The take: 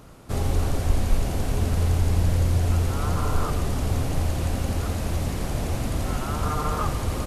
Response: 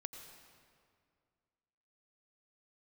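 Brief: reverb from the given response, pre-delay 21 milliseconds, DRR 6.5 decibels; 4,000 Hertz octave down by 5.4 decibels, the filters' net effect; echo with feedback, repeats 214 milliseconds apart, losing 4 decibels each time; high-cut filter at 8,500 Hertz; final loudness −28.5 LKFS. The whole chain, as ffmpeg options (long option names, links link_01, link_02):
-filter_complex "[0:a]lowpass=8500,equalizer=frequency=4000:width_type=o:gain=-7,aecho=1:1:214|428|642|856|1070|1284|1498|1712|1926:0.631|0.398|0.25|0.158|0.0994|0.0626|0.0394|0.0249|0.0157,asplit=2[link_01][link_02];[1:a]atrim=start_sample=2205,adelay=21[link_03];[link_02][link_03]afir=irnorm=-1:irlink=0,volume=-3.5dB[link_04];[link_01][link_04]amix=inputs=2:normalize=0,volume=-5dB"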